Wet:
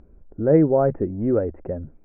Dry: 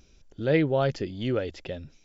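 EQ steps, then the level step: Gaussian low-pass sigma 7.5 samples; distance through air 120 m; peaking EQ 130 Hz -9 dB 0.24 oct; +8.5 dB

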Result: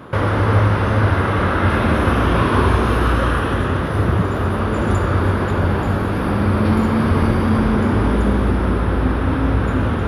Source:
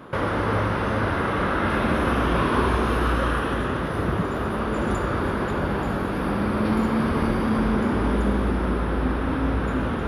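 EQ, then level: peaking EQ 94 Hz +11 dB 0.54 oct; +4.5 dB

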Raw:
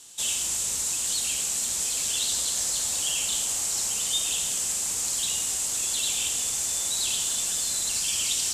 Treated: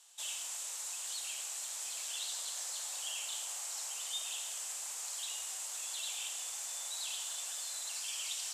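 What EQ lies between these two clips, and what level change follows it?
high-pass 630 Hz 24 dB/octave; peaking EQ 8.7 kHz -6.5 dB 2.8 oct; -7.5 dB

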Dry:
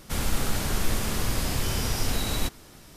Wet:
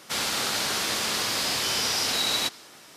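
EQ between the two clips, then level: frequency weighting A; dynamic bell 4.4 kHz, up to +6 dB, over -48 dBFS, Q 1.3; +3.5 dB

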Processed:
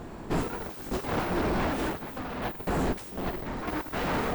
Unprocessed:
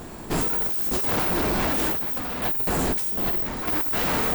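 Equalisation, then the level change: low-pass 2.1 kHz 6 dB/octave; -2.0 dB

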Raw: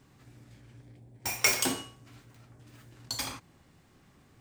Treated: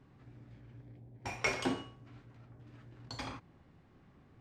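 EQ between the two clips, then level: tape spacing loss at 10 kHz 27 dB; 0.0 dB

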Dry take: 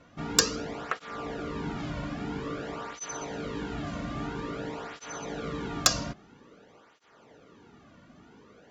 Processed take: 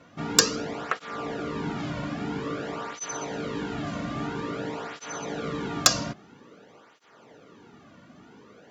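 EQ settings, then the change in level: high-pass 98 Hz 12 dB/octave; +3.5 dB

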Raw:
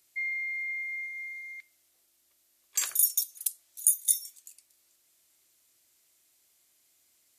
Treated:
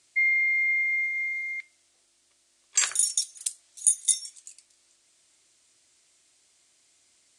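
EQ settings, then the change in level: elliptic low-pass 9.1 kHz, stop band 60 dB; dynamic bell 1.8 kHz, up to +4 dB, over -48 dBFS, Q 0.91; +6.5 dB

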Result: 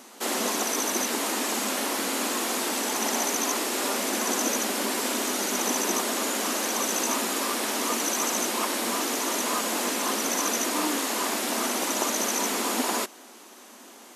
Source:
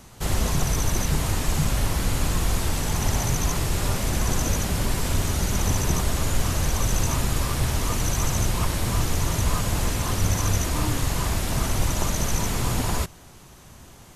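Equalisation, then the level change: brick-wall FIR high-pass 210 Hz; +2.5 dB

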